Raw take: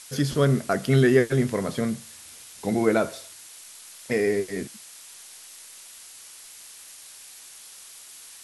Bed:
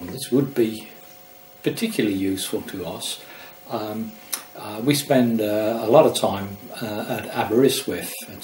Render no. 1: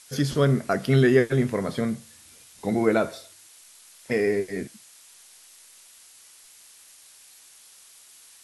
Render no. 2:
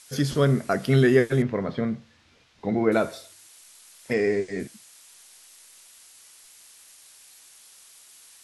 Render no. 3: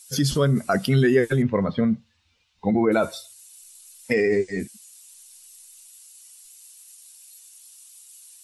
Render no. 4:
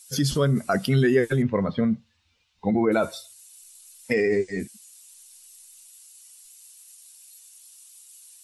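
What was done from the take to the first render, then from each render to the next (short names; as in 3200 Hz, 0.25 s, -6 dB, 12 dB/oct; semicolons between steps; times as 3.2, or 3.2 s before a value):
noise print and reduce 6 dB
1.42–2.92 air absorption 220 m; 4.13–4.6 steep low-pass 8200 Hz
per-bin expansion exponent 1.5; in parallel at +2 dB: negative-ratio compressor -29 dBFS, ratio -1
gain -1.5 dB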